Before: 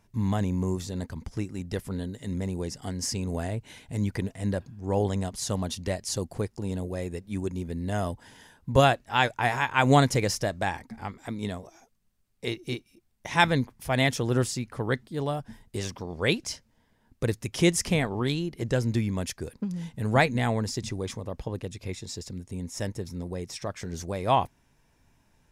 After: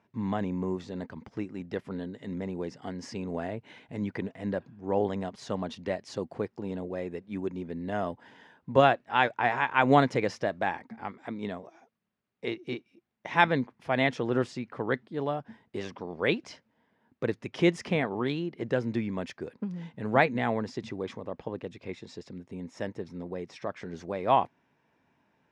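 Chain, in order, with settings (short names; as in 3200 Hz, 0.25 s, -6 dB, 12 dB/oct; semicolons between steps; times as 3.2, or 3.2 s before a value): BPF 200–2600 Hz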